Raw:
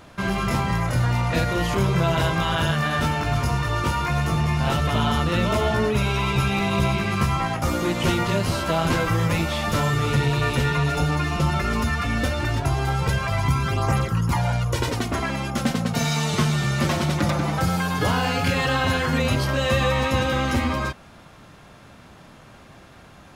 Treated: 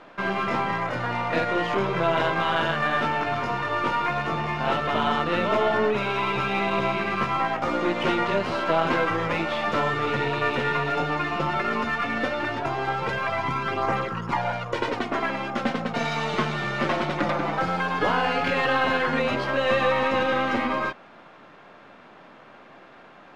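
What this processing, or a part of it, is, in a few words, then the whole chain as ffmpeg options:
crystal radio: -af "highpass=300,lowpass=2.6k,aeval=exprs='if(lt(val(0),0),0.708*val(0),val(0))':c=same,volume=3dB"

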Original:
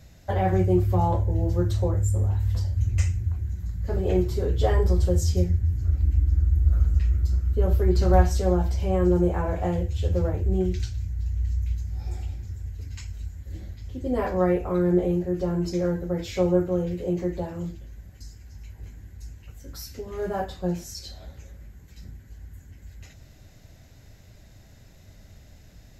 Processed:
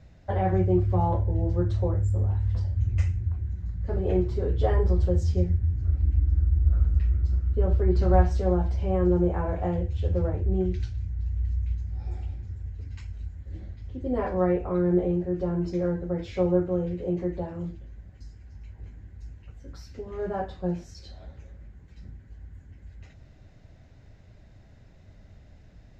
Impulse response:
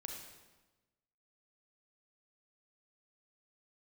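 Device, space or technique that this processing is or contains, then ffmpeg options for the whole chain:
through cloth: -af "lowpass=6.5k,highshelf=f=3.7k:g=-13,volume=-1.5dB"

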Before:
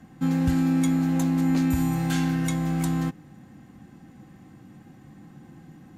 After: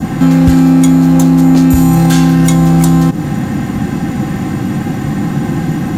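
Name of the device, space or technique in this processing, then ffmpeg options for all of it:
loud club master: -af "adynamicequalizer=threshold=0.00355:dfrequency=2100:dqfactor=1:tfrequency=2100:tqfactor=1:attack=5:release=100:ratio=0.375:range=3:mode=cutabove:tftype=bell,acompressor=threshold=-28dB:ratio=2,asoftclip=type=hard:threshold=-22.5dB,alimiter=level_in=33.5dB:limit=-1dB:release=50:level=0:latency=1,volume=-1dB"

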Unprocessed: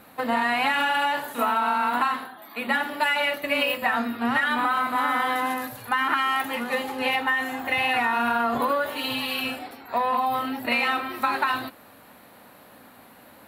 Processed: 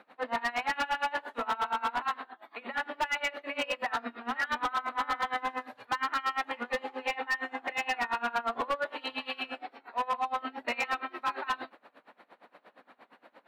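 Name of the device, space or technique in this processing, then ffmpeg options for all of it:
helicopter radio: -af "highpass=350,lowpass=3k,aeval=exprs='val(0)*pow(10,-24*(0.5-0.5*cos(2*PI*8.6*n/s))/20)':c=same,asoftclip=type=hard:threshold=-24.5dB"

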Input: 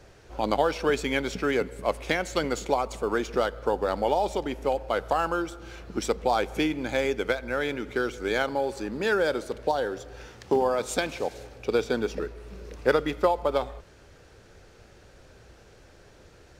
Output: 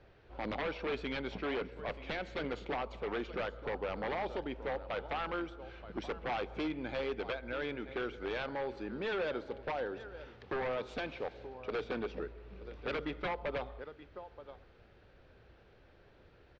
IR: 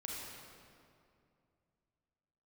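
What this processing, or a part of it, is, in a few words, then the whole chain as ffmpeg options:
synthesiser wavefolder: -af "aecho=1:1:928:0.141,aeval=exprs='0.0891*(abs(mod(val(0)/0.0891+3,4)-2)-1)':c=same,lowpass=f=3.8k:w=0.5412,lowpass=f=3.8k:w=1.3066,volume=-8.5dB"

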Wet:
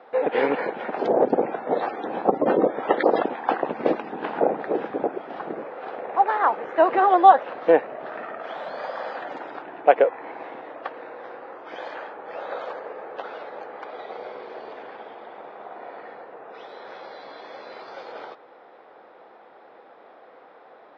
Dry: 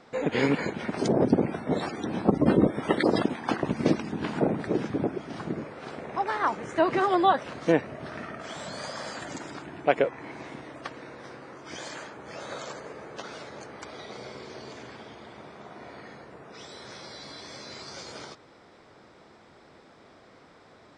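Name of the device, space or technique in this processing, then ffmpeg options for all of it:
phone earpiece: -af "highpass=420,equalizer=f=500:t=q:w=4:g=6,equalizer=f=780:t=q:w=4:g=7,equalizer=f=2.2k:t=q:w=4:g=-5,lowpass=f=3k:w=0.5412,lowpass=f=3k:w=1.3066,equalizer=f=3k:t=o:w=0.31:g=-3,volume=4dB"

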